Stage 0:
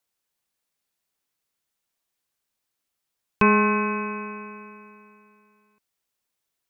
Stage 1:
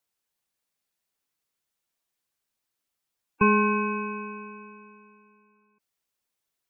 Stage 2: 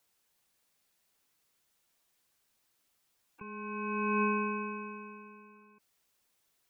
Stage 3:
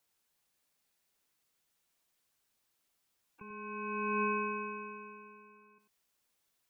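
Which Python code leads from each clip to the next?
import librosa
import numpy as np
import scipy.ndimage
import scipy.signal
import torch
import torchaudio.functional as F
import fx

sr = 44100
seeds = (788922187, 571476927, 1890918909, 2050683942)

y1 = fx.spec_gate(x, sr, threshold_db=-15, keep='strong')
y1 = y1 * librosa.db_to_amplitude(-2.0)
y2 = fx.over_compress(y1, sr, threshold_db=-35.0, ratio=-1.0)
y3 = y2 + 10.0 ** (-8.5 / 20.0) * np.pad(y2, (int(93 * sr / 1000.0), 0))[:len(y2)]
y3 = y3 * librosa.db_to_amplitude(-4.0)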